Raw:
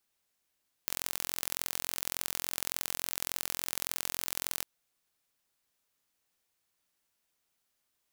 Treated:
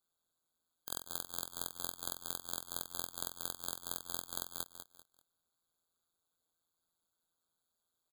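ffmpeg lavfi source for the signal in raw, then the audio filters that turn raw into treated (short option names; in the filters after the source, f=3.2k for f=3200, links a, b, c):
-f lavfi -i "aevalsrc='0.596*eq(mod(n,1014),0)*(0.5+0.5*eq(mod(n,2028),0))':d=3.75:s=44100"
-af "tremolo=f=170:d=0.919,aecho=1:1:195|390|585:0.335|0.1|0.0301,afftfilt=real='re*eq(mod(floor(b*sr/1024/1600),2),0)':imag='im*eq(mod(floor(b*sr/1024/1600),2),0)':win_size=1024:overlap=0.75"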